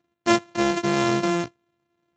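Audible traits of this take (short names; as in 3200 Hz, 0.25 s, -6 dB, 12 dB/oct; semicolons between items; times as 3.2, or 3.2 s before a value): a buzz of ramps at a fixed pitch in blocks of 128 samples; Speex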